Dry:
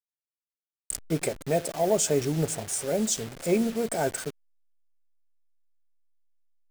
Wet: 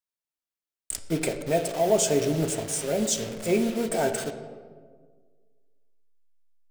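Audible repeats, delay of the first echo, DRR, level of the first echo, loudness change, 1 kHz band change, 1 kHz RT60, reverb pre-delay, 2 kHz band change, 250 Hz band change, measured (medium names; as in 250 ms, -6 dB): no echo, no echo, 6.0 dB, no echo, +1.5 dB, +2.0 dB, 1.4 s, 3 ms, +2.5 dB, +1.0 dB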